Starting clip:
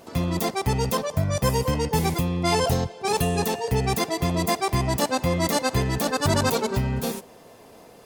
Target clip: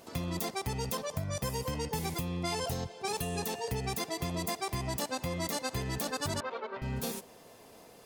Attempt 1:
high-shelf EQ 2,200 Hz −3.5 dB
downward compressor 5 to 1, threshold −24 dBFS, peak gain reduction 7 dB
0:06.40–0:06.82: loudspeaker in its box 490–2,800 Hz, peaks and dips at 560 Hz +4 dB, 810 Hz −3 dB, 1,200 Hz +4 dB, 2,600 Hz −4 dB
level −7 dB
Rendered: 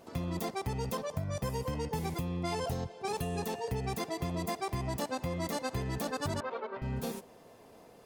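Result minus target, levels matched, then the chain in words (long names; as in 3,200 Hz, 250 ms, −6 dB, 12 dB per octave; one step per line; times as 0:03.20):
4,000 Hz band −4.5 dB
high-shelf EQ 2,200 Hz +5 dB
downward compressor 5 to 1, threshold −24 dBFS, peak gain reduction 8 dB
0:06.40–0:06.82: loudspeaker in its box 490–2,800 Hz, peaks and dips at 560 Hz +4 dB, 810 Hz −3 dB, 1,200 Hz +4 dB, 2,600 Hz −4 dB
level −7 dB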